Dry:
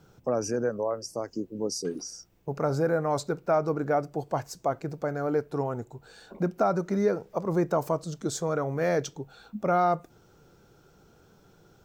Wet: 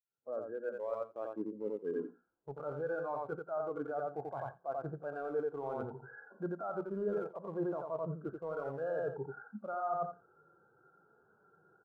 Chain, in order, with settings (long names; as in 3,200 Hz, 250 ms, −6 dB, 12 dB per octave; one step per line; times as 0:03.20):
fade in at the beginning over 1.31 s
linear-phase brick-wall low-pass 1,700 Hz
spectral tilt +4 dB per octave
in parallel at −6 dB: centre clipping without the shift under −31 dBFS
on the sum: mains-hum notches 60/120/180/240 Hz
brickwall limiter −23 dBFS, peak gain reduction 11.5 dB
repeating echo 88 ms, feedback 19%, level −5 dB
harmonic and percussive parts rebalanced harmonic +7 dB
reversed playback
downward compressor 12 to 1, threshold −35 dBFS, peak gain reduction 17 dB
reversed playback
every bin expanded away from the loudest bin 1.5 to 1
level −2 dB